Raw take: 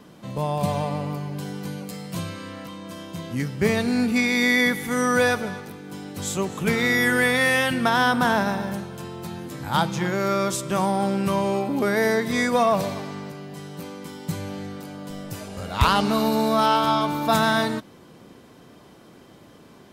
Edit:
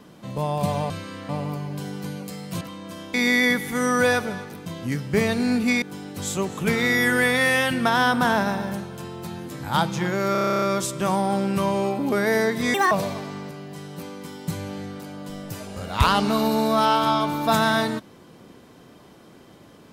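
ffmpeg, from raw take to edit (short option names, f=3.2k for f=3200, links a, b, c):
-filter_complex "[0:a]asplit=19[a][b][c][d][e][f][g][h][i][j][k][l][m][n][o][p][q][r][s];[a]atrim=end=0.902[t];[b]atrim=start=2.218:end=2.612[u];[c]atrim=start=0.898:end=2.222[v];[d]atrim=start=2.608:end=3.142[w];[e]atrim=start=4.298:end=5.822[x];[f]atrim=start=3.138:end=4.302[y];[g]atrim=start=5.818:end=10.352[z];[h]atrim=start=10.318:end=10.352[aa];[i]atrim=start=10.318:end=10.352[ab];[j]atrim=start=10.318:end=10.352[ac];[k]atrim=start=10.318:end=10.352[ad];[l]atrim=start=10.318:end=10.352[ae];[m]atrim=start=10.318:end=10.352[af];[n]atrim=start=10.318:end=10.352[ag];[o]atrim=start=10.318:end=10.352[ah];[p]atrim=start=10.318:end=10.352[ai];[q]atrim=start=10.318:end=12.444[aj];[r]atrim=start=12.44:end=12.72,asetpts=PTS-STARTPTS,asetrate=71442,aresample=44100,atrim=end_sample=7622,asetpts=PTS-STARTPTS[ak];[s]atrim=start=12.716[al];[t][u]acrossfade=d=0.004:c1=hsin:c2=hsin[am];[am][v]acrossfade=d=0.004:c1=hsin:c2=hsin[an];[an][w]acrossfade=d=0.004:c1=hsin:c2=hsin[ao];[ao][x]acrossfade=d=0.004:c1=hsin:c2=hsin[ap];[ap][y]acrossfade=d=0.004:c1=hsin:c2=hsin[aq];[aq][z]acrossfade=d=0.004:c1=hsin:c2=hsin[ar];[ar][aa]acrossfade=d=0.004:c1=hsin:c2=hsin[as];[as][ab]acrossfade=d=0.004:c1=hsin:c2=hsin[at];[at][ac]acrossfade=d=0.004:c1=hsin:c2=hsin[au];[au][ad]acrossfade=d=0.004:c1=hsin:c2=hsin[av];[av][ae]acrossfade=d=0.004:c1=hsin:c2=hsin[aw];[aw][af]acrossfade=d=0.004:c1=hsin:c2=hsin[ax];[ax][ag]acrossfade=d=0.004:c1=hsin:c2=hsin[ay];[ay][ah]acrossfade=d=0.004:c1=hsin:c2=hsin[az];[az][ai]acrossfade=d=0.004:c1=hsin:c2=hsin[ba];[ba][aj]acrossfade=d=0.004:c1=hsin:c2=hsin[bb];[bb][ak]acrossfade=d=0.004:c1=hsin:c2=hsin[bc];[bc][al]acrossfade=d=0.004:c1=hsin:c2=hsin"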